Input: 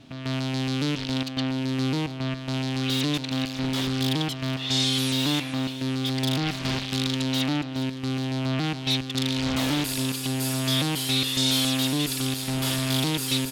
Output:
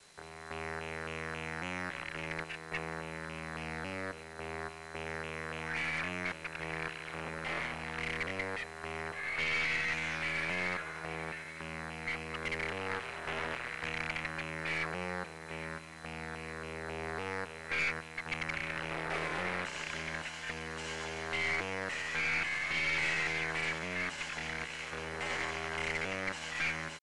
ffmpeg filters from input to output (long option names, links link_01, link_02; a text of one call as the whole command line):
ffmpeg -i in.wav -filter_complex "[0:a]acrossover=split=600 4300:gain=0.1 1 0.178[link_01][link_02][link_03];[link_01][link_02][link_03]amix=inputs=3:normalize=0,aeval=exprs='val(0)+0.00126*sin(2*PI*6600*n/s)':channel_layout=same,asetrate=53981,aresample=44100,atempo=0.816958,aeval=exprs='(tanh(14.1*val(0)+0.4)-tanh(0.4))/14.1':channel_layout=same,acrusher=bits=8:mix=0:aa=0.000001,asetrate=22050,aresample=44100,volume=-2dB" out.wav